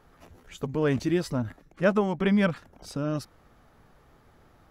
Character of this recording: noise floor -59 dBFS; spectral tilt -6.0 dB/octave

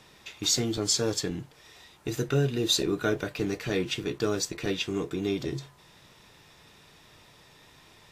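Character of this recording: noise floor -56 dBFS; spectral tilt -3.5 dB/octave

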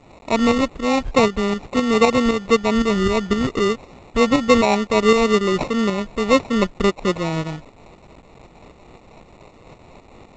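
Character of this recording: a quantiser's noise floor 8-bit, dither triangular; tremolo saw up 3.9 Hz, depth 55%; aliases and images of a low sample rate 1.6 kHz, jitter 0%; G.722

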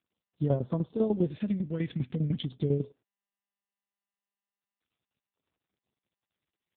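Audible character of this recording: phasing stages 2, 0.4 Hz, lowest notch 680–2300 Hz; tremolo saw down 10 Hz, depth 75%; AMR-NB

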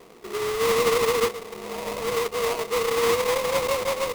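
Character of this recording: aliases and images of a low sample rate 1.6 kHz, jitter 20%

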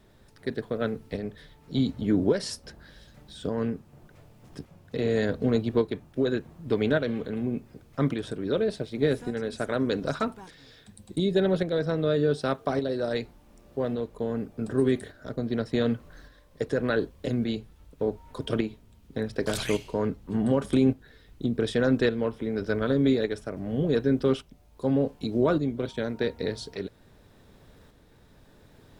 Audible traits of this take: a quantiser's noise floor 12-bit, dither triangular; tremolo saw up 0.86 Hz, depth 45%; Vorbis

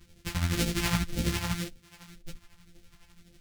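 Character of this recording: a buzz of ramps at a fixed pitch in blocks of 256 samples; phasing stages 2, 1.9 Hz, lowest notch 400–1000 Hz; tremolo triangle 12 Hz, depth 70%; a shimmering, thickened sound

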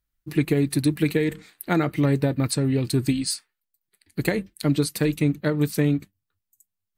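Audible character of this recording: noise floor -83 dBFS; spectral tilt -6.5 dB/octave

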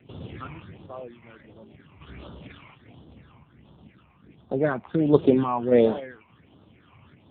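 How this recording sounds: a quantiser's noise floor 12-bit, dither none; random-step tremolo; phasing stages 8, 1.4 Hz, lowest notch 470–2100 Hz; AMR-NB

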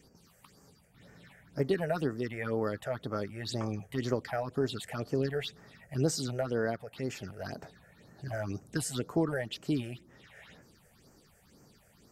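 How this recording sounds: phasing stages 6, 2 Hz, lowest notch 270–3600 Hz

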